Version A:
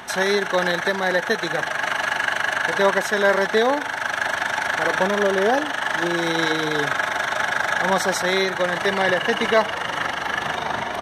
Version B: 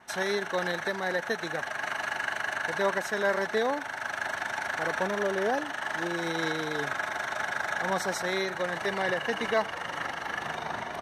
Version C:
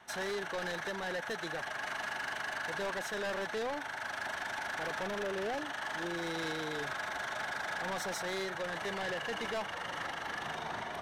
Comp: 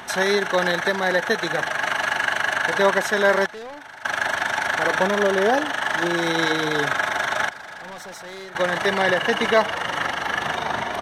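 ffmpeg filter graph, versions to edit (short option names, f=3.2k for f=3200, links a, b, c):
-filter_complex "[2:a]asplit=2[a][b];[0:a]asplit=3[c][d][e];[c]atrim=end=3.462[f];[a]atrim=start=3.458:end=4.052[g];[d]atrim=start=4.048:end=7.492[h];[b]atrim=start=7.488:end=8.552[i];[e]atrim=start=8.548[j];[f][g]acrossfade=d=0.004:c1=hsin:c2=hsin[k];[k][h]acrossfade=d=0.004:c1=hsin:c2=hsin[l];[l][i]acrossfade=d=0.004:c1=hsin:c2=hsin[m];[m][j]acrossfade=d=0.004:c1=hsin:c2=hsin"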